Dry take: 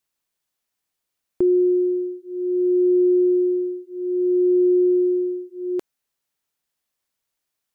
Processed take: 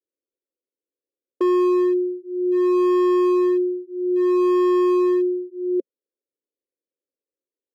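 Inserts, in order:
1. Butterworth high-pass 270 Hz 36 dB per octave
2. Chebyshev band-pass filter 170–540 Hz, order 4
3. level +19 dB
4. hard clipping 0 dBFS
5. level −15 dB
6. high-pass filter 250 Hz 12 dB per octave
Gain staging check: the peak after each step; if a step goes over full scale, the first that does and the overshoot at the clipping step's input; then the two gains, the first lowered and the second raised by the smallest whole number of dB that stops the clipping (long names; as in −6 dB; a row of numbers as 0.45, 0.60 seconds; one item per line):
−12.5, −13.0, +6.0, 0.0, −15.0, −11.5 dBFS
step 3, 6.0 dB
step 3 +13 dB, step 5 −9 dB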